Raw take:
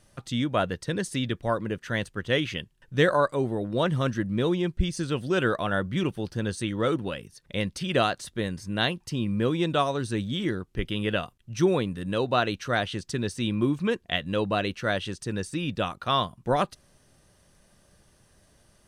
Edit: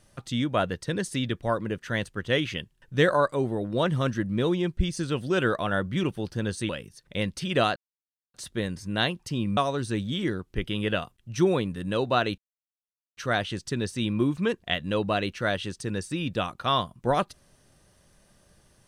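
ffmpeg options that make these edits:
-filter_complex "[0:a]asplit=5[a][b][c][d][e];[a]atrim=end=6.692[f];[b]atrim=start=7.078:end=8.15,asetpts=PTS-STARTPTS,afade=t=out:st=1.068:d=0.004:c=hsin,apad=pad_dur=0.58[g];[c]atrim=start=8.15:end=9.382,asetpts=PTS-STARTPTS,afade=t=in:d=0.004:c=hsin[h];[d]atrim=start=9.778:end=12.59,asetpts=PTS-STARTPTS,afade=t=out:st=2.808:d=0.004:c=hsin,apad=pad_dur=0.79[i];[e]atrim=start=12.59,asetpts=PTS-STARTPTS,afade=t=in:d=0.004:c=hsin[j];[g][h]concat=n=2:v=0:a=1[k];[f][k]acrossfade=d=0.004:c1=hsin:c2=hsin[l];[i][j]concat=n=2:v=0:a=1[m];[l][m]acrossfade=d=0.004:c1=hsin:c2=hsin"

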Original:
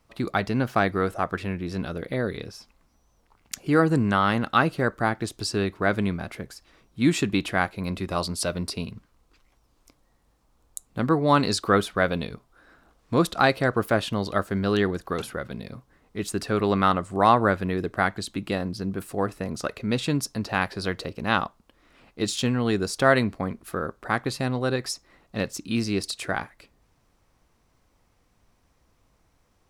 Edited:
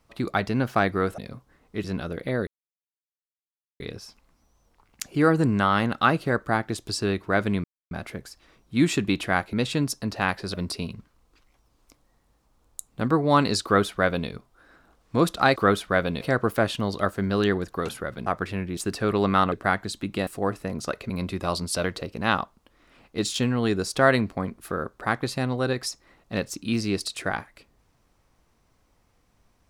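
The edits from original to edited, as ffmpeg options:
-filter_complex "[0:a]asplit=15[a][b][c][d][e][f][g][h][i][j][k][l][m][n][o];[a]atrim=end=1.182[p];[b]atrim=start=15.588:end=16.252[q];[c]atrim=start=1.688:end=2.32,asetpts=PTS-STARTPTS,afade=t=out:st=0.628:d=0.004:c=hsin,apad=pad_dur=1.33[r];[d]atrim=start=2.32:end=6.16,asetpts=PTS-STARTPTS,afade=t=in:d=0.004:c=hsin,afade=t=out:st=3.836:d=0.004:c=hsin,apad=pad_dur=0.27[s];[e]atrim=start=6.16:end=7.782,asetpts=PTS-STARTPTS,afade=t=in:d=0.004:c=hsin[t];[f]atrim=start=19.858:end=20.872[u];[g]atrim=start=8.518:end=13.542[v];[h]atrim=start=11.618:end=12.272[w];[i]atrim=start=13.538:end=15.592[x];[j]atrim=start=1.178:end=1.692[y];[k]atrim=start=16.248:end=17.002[z];[l]atrim=start=17.848:end=18.602[aa];[m]atrim=start=19.028:end=19.862[ab];[n]atrim=start=7.778:end=8.522[ac];[o]atrim=start=20.868[ad];[p][q]acrossfade=d=0.004:c1=hsin:c2=hsin[ae];[r][s][t]concat=n=3:v=0:a=1[af];[ae][af]acrossfade=d=0.004:c1=hsin:c2=hsin[ag];[ag][u]acrossfade=d=0.004:c1=hsin:c2=hsin[ah];[ah][v]acrossfade=d=0.004:c1=hsin:c2=hsin[ai];[ai][w]acrossfade=d=0.004:c1=hsin:c2=hsin[aj];[aj][x]acrossfade=d=0.004:c1=hsin:c2=hsin[ak];[ak][y]acrossfade=d=0.004:c1=hsin:c2=hsin[al];[al][z]acrossfade=d=0.004:c1=hsin:c2=hsin[am];[am][aa]acrossfade=d=0.004:c1=hsin:c2=hsin[an];[an][ab]acrossfade=d=0.004:c1=hsin:c2=hsin[ao];[ao][ac]acrossfade=d=0.004:c1=hsin:c2=hsin[ap];[ap][ad]acrossfade=d=0.004:c1=hsin:c2=hsin"

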